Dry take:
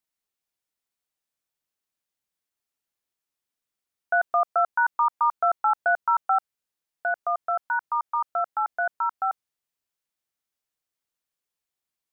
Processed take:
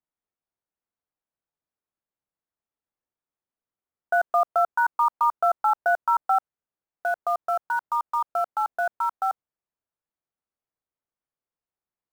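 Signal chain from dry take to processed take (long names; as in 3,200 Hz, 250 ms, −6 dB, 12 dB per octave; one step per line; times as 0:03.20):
low-pass filter 1,300 Hz 12 dB per octave
in parallel at −10.5 dB: bit reduction 6 bits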